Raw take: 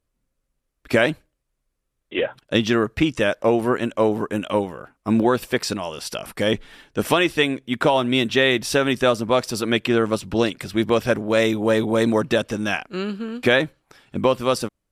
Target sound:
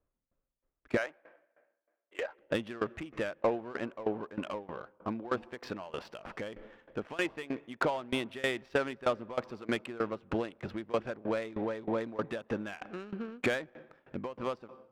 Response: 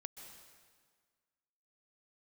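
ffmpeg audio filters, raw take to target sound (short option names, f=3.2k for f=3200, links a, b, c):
-filter_complex "[0:a]acompressor=threshold=-29dB:ratio=2.5,asplit=2[a][b];[1:a]atrim=start_sample=2205[c];[b][c]afir=irnorm=-1:irlink=0,volume=-6.5dB[d];[a][d]amix=inputs=2:normalize=0,asplit=2[e][f];[f]highpass=f=720:p=1,volume=8dB,asoftclip=type=tanh:threshold=-12.5dB[g];[e][g]amix=inputs=2:normalize=0,lowpass=f=1.8k:p=1,volume=-6dB,asettb=1/sr,asplit=3[h][i][j];[h]atrim=end=0.974[k];[i]atrim=start=0.97:end=2.39,asetpts=PTS-STARTPTS,afade=t=in:d=0.004:c=qsin,afade=t=out:st=1.416:d=0.004:c=qsin,highpass=630,lowpass=2.8k[l];[j]atrim=start=2.386[m];[k][l]acrossfade=d=0.004:c1=hsin:c2=qsin[n];[n][m]acrossfade=d=0.004:c1=qsin:c2=hsin,adynamicsmooth=sensitivity=3.5:basefreq=1.5k,aeval=exprs='val(0)*pow(10,-20*if(lt(mod(3.2*n/s,1),2*abs(3.2)/1000),1-mod(3.2*n/s,1)/(2*abs(3.2)/1000),(mod(3.2*n/s,1)-2*abs(3.2)/1000)/(1-2*abs(3.2)/1000))/20)':c=same"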